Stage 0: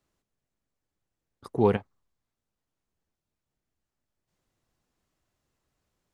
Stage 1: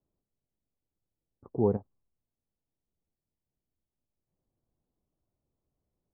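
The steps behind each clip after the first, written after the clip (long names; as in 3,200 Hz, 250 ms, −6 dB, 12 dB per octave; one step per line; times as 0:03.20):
Bessel low-pass filter 610 Hz, order 4
level −2.5 dB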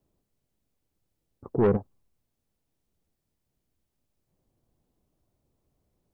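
soft clipping −25 dBFS, distortion −9 dB
level +9 dB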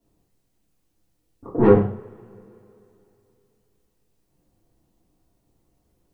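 coupled-rooms reverb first 0.45 s, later 3.1 s, from −28 dB, DRR −8 dB
level −1 dB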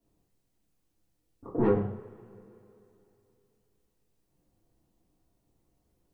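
downward compressor 2.5 to 1, threshold −17 dBFS, peak gain reduction 7 dB
level −5.5 dB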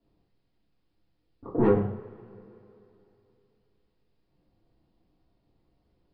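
downsampling to 11,025 Hz
level +3 dB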